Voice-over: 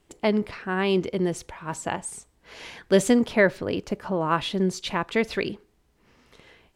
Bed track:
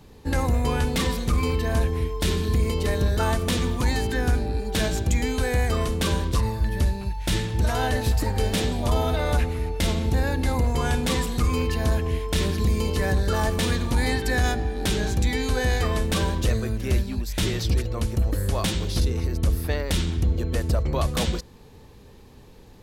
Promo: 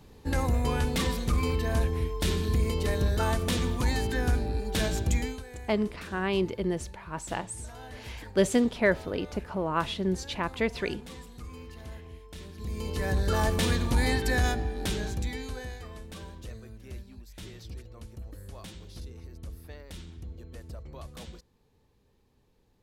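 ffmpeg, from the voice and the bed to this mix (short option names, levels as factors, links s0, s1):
-filter_complex "[0:a]adelay=5450,volume=0.596[s0];[1:a]volume=5.01,afade=t=out:st=5.15:d=0.28:silence=0.149624,afade=t=in:st=12.54:d=0.84:silence=0.125893,afade=t=out:st=14.24:d=1.54:silence=0.141254[s1];[s0][s1]amix=inputs=2:normalize=0"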